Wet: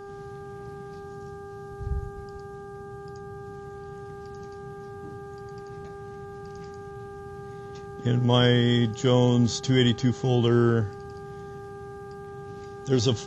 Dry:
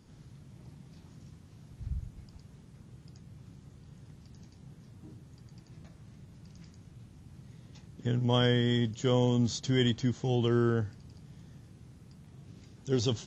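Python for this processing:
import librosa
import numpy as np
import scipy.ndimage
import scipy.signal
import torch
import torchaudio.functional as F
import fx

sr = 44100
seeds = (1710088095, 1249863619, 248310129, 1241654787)

y = fx.peak_eq(x, sr, hz=1800.0, db=-5.0, octaves=1.7, at=(0.96, 3.54))
y = fx.dmg_buzz(y, sr, base_hz=400.0, harmonics=4, level_db=-47.0, tilt_db=-7, odd_only=False)
y = y * librosa.db_to_amplitude(6.0)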